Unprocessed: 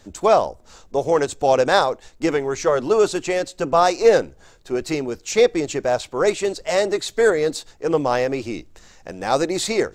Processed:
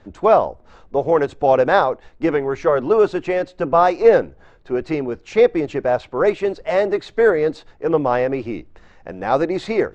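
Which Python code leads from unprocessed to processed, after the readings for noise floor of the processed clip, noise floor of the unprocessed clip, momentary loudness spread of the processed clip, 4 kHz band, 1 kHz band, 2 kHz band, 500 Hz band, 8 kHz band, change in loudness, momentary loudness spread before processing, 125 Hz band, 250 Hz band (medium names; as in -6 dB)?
-50 dBFS, -50 dBFS, 11 LU, -8.5 dB, +2.0 dB, +0.5 dB, +2.0 dB, under -15 dB, +1.5 dB, 11 LU, +2.0 dB, +2.0 dB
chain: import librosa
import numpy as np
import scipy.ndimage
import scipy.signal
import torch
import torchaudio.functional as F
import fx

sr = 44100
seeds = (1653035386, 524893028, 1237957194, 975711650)

y = scipy.signal.sosfilt(scipy.signal.butter(2, 2200.0, 'lowpass', fs=sr, output='sos'), x)
y = y * 10.0 ** (2.0 / 20.0)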